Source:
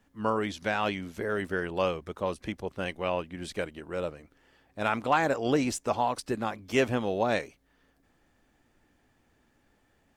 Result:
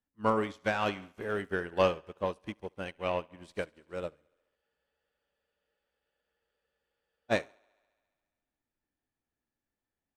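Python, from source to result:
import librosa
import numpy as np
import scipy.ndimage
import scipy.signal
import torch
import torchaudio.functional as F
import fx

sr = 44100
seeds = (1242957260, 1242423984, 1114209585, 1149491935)

p1 = fx.echo_thinned(x, sr, ms=69, feedback_pct=79, hz=200.0, wet_db=-14.0)
p2 = 10.0 ** (-24.0 / 20.0) * np.tanh(p1 / 10.0 ** (-24.0 / 20.0))
p3 = p1 + (p2 * 10.0 ** (-3.5 / 20.0))
p4 = fx.spec_freeze(p3, sr, seeds[0], at_s=4.58, hold_s=2.73)
y = fx.upward_expand(p4, sr, threshold_db=-40.0, expansion=2.5)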